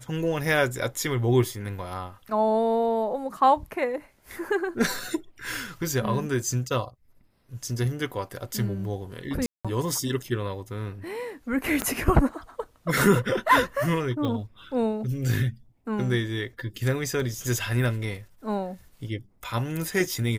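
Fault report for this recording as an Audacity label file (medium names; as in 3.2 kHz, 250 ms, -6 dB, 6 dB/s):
9.460000	9.650000	dropout 186 ms
11.820000	11.820000	pop -11 dBFS
14.250000	14.250000	pop -19 dBFS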